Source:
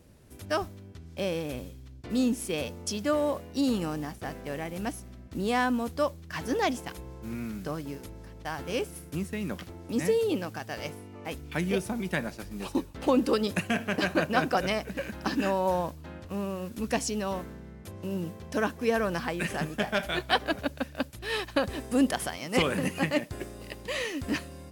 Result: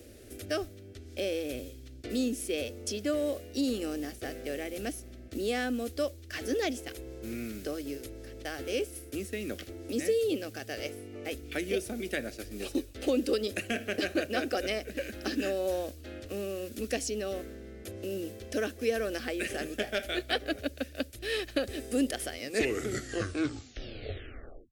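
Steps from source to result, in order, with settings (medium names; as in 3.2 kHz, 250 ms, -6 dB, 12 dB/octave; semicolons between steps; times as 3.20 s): tape stop on the ending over 2.44 s; static phaser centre 400 Hz, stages 4; three bands compressed up and down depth 40%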